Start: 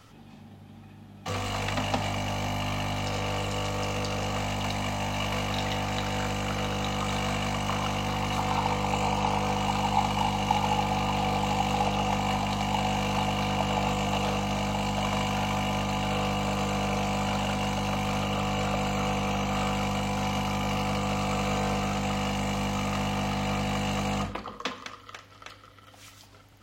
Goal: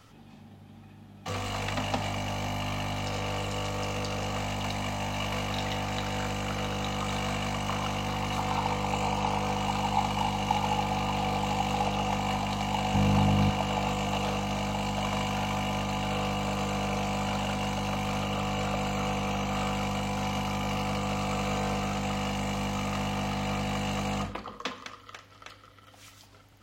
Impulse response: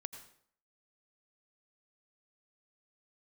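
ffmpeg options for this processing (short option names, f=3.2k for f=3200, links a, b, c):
-filter_complex "[0:a]asettb=1/sr,asplit=3[a][b][c];[a]atrim=end=12.944[d];[b]atrim=start=12.94:end=13.5,asetpts=PTS-STARTPTS,afade=t=in:d=0.004:c=qsin,afade=t=out:st=0.556:d=0.004:c=qsin,equalizer=f=110:w=0.36:g=10.5[e];[c]atrim=start=13.496[f];[d][e]acrossfade=d=0.004:c1=hsin:c2=qsin[g];[g][f]acrossfade=d=0.004:c1=qsin:c2=hsin,volume=-2dB"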